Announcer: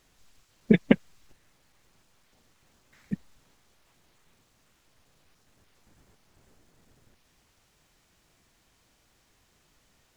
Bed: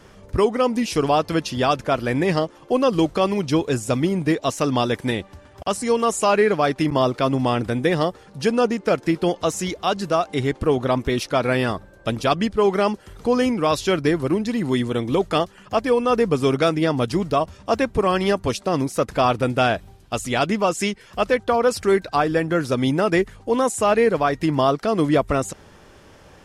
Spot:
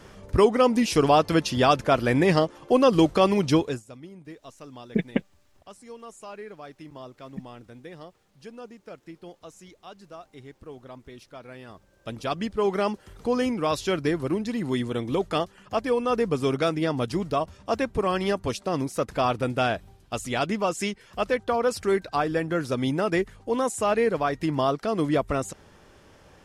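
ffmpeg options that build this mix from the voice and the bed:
-filter_complex "[0:a]adelay=4250,volume=-5.5dB[a];[1:a]volume=17.5dB,afade=t=out:st=3.52:d=0.31:silence=0.0707946,afade=t=in:st=11.66:d=1.07:silence=0.133352[b];[a][b]amix=inputs=2:normalize=0"

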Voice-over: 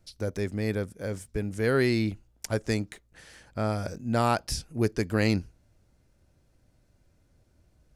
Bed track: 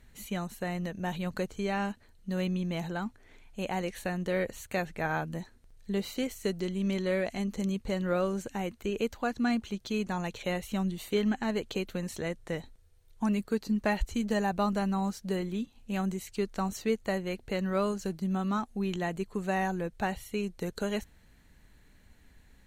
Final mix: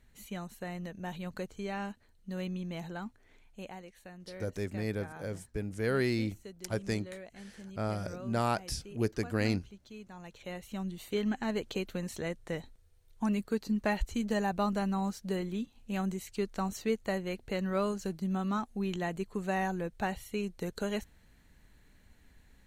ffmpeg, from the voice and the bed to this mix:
-filter_complex "[0:a]adelay=4200,volume=-5.5dB[a];[1:a]volume=8.5dB,afade=t=out:st=3.44:d=0.38:silence=0.298538,afade=t=in:st=10.12:d=1.42:silence=0.188365[b];[a][b]amix=inputs=2:normalize=0"

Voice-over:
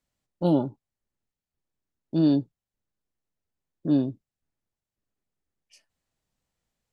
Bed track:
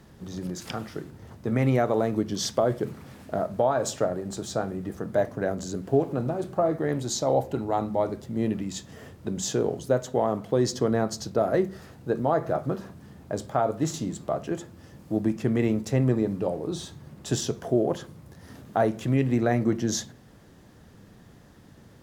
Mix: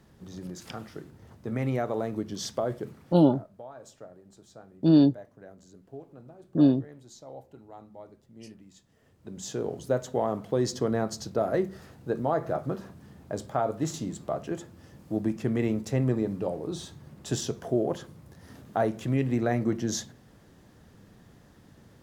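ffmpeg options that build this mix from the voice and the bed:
-filter_complex "[0:a]adelay=2700,volume=2.5dB[a];[1:a]volume=12dB,afade=t=out:st=2.73:d=0.7:silence=0.177828,afade=t=in:st=9.03:d=0.91:silence=0.125893[b];[a][b]amix=inputs=2:normalize=0"

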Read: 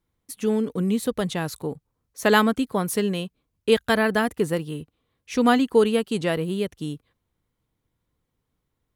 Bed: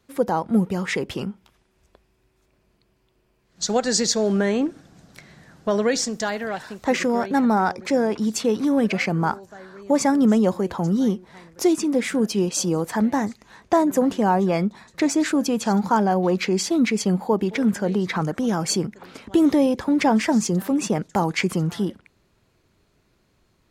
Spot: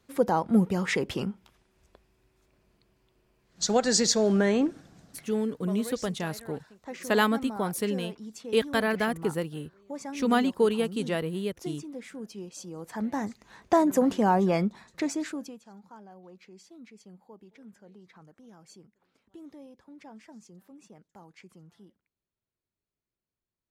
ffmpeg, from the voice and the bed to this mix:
-filter_complex "[0:a]adelay=4850,volume=-5.5dB[a];[1:a]volume=13dB,afade=t=out:st=4.75:d=0.98:silence=0.149624,afade=t=in:st=12.73:d=0.96:silence=0.16788,afade=t=out:st=14.54:d=1.07:silence=0.0473151[b];[a][b]amix=inputs=2:normalize=0"

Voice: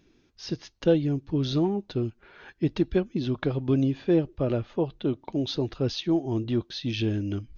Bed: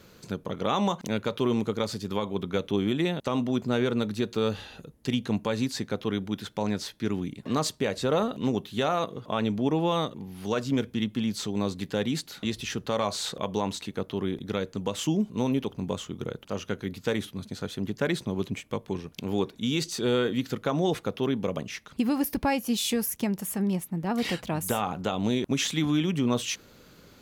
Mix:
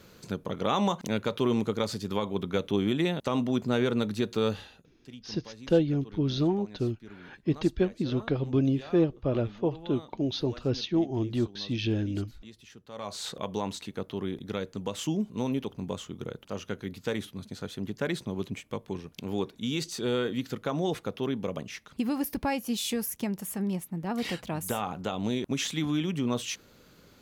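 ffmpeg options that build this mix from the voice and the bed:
-filter_complex "[0:a]adelay=4850,volume=-1.5dB[a];[1:a]volume=15dB,afade=t=out:st=4.5:d=0.34:silence=0.11885,afade=t=in:st=12.89:d=0.41:silence=0.16788[b];[a][b]amix=inputs=2:normalize=0"

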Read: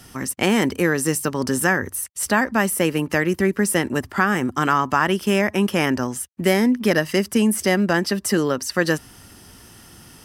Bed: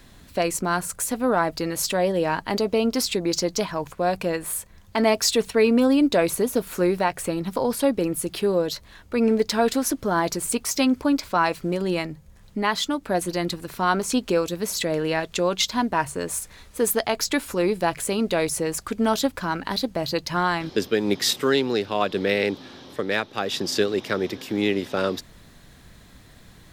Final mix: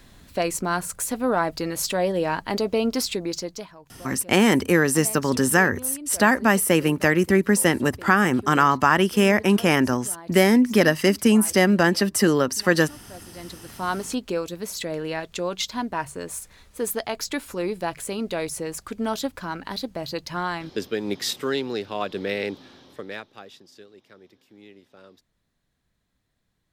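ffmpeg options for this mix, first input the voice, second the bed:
-filter_complex "[0:a]adelay=3900,volume=1dB[a];[1:a]volume=14dB,afade=t=out:st=2.99:d=0.78:silence=0.112202,afade=t=in:st=13.3:d=0.59:silence=0.177828,afade=t=out:st=22.56:d=1.07:silence=0.0891251[b];[a][b]amix=inputs=2:normalize=0"

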